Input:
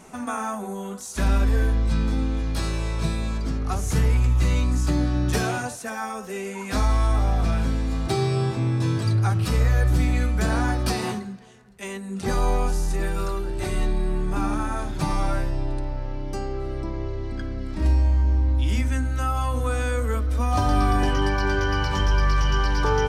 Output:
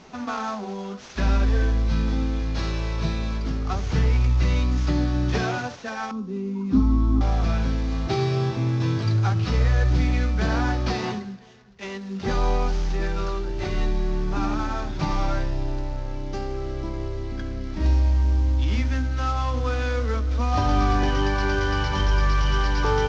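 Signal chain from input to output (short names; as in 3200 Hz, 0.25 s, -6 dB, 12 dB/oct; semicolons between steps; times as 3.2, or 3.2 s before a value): CVSD 32 kbps; 6.11–7.21 EQ curve 100 Hz 0 dB, 270 Hz +13 dB, 620 Hz -19 dB, 1100 Hz -6 dB, 1700 Hz -20 dB, 4000 Hz -14 dB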